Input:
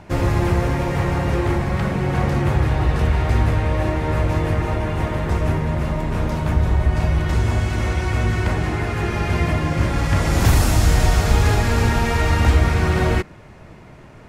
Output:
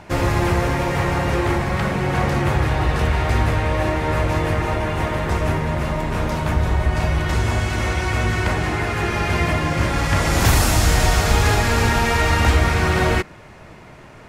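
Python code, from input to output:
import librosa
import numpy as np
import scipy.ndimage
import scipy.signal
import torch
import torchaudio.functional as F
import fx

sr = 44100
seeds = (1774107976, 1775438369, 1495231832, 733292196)

y = fx.low_shelf(x, sr, hz=450.0, db=-6.5)
y = F.gain(torch.from_numpy(y), 4.5).numpy()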